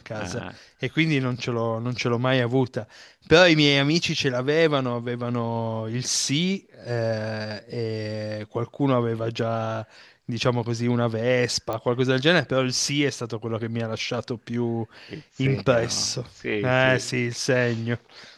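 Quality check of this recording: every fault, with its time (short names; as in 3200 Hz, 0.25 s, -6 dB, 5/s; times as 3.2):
11.73 pop -16 dBFS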